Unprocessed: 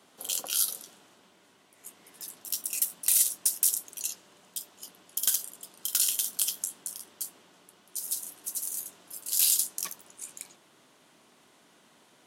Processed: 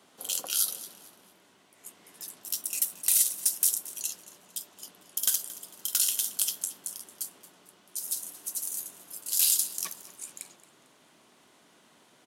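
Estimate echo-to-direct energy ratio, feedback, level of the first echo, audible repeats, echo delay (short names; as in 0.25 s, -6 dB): -17.5 dB, 34%, -18.0 dB, 2, 0.225 s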